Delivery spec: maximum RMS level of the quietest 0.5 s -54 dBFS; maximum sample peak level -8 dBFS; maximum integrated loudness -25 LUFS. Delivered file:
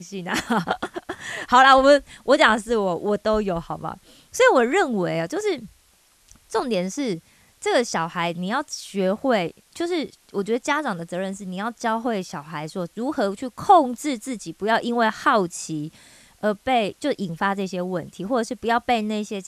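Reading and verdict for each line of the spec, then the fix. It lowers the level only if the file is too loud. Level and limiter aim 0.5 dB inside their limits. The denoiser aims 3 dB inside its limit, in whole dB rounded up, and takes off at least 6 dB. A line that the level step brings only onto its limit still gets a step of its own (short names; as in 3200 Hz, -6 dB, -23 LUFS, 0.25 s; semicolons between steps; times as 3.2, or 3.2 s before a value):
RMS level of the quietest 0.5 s -59 dBFS: OK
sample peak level -3.0 dBFS: fail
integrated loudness -22.5 LUFS: fail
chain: gain -3 dB; limiter -8.5 dBFS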